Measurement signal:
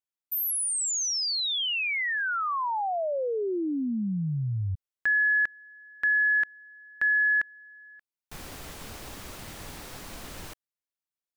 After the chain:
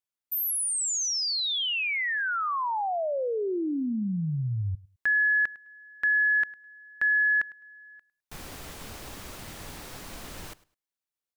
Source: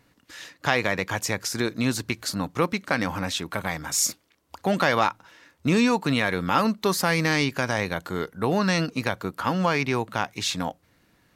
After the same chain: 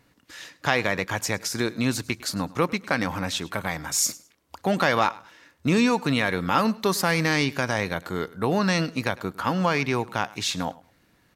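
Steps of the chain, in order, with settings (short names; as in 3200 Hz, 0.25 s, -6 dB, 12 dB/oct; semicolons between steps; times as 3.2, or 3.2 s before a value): feedback echo 0.104 s, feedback 21%, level -21 dB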